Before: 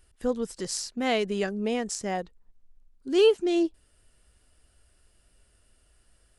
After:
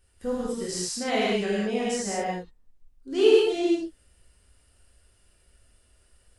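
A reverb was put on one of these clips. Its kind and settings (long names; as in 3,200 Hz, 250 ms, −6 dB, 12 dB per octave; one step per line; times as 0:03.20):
reverb whose tail is shaped and stops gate 240 ms flat, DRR −8 dB
level −6.5 dB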